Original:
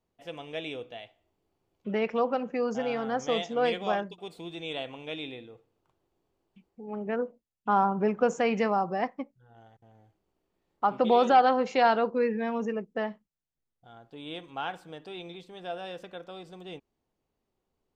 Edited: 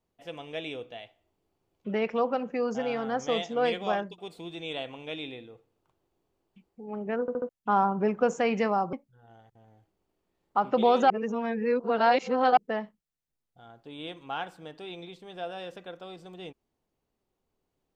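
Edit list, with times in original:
7.21 s: stutter in place 0.07 s, 4 plays
8.93–9.20 s: delete
11.37–12.84 s: reverse

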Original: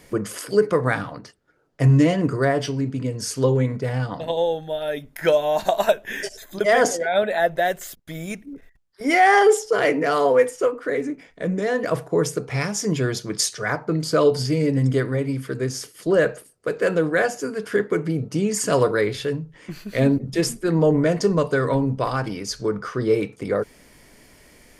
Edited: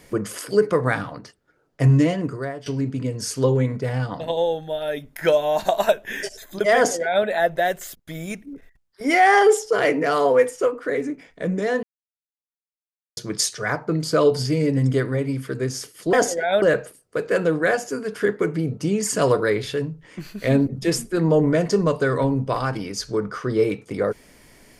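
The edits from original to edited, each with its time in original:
1.89–2.66 s: fade out, to -18 dB
6.76–7.25 s: copy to 16.13 s
11.83–13.17 s: mute

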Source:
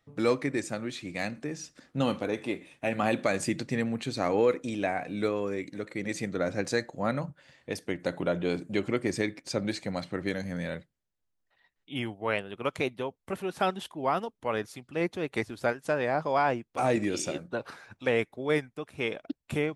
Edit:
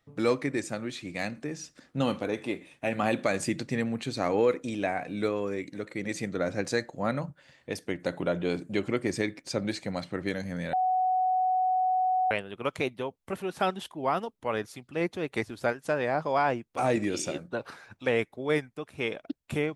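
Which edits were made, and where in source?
10.73–12.31 s: bleep 743 Hz -22.5 dBFS

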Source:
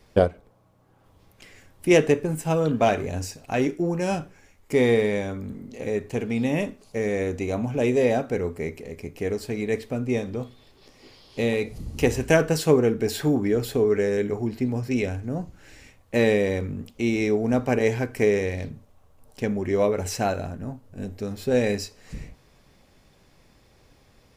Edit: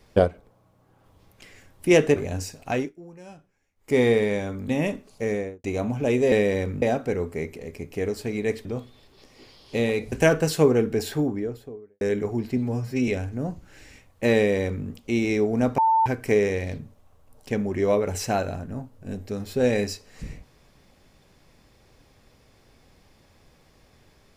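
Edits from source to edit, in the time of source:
2.16–2.98 s: delete
3.54–4.78 s: dip -19 dB, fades 0.20 s
5.51–6.43 s: delete
7.02–7.38 s: studio fade out
9.89–10.29 s: delete
11.76–12.20 s: delete
12.92–14.09 s: studio fade out
14.65–14.99 s: stretch 1.5×
16.27–16.77 s: copy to 8.06 s
17.69–17.97 s: bleep 894 Hz -16 dBFS

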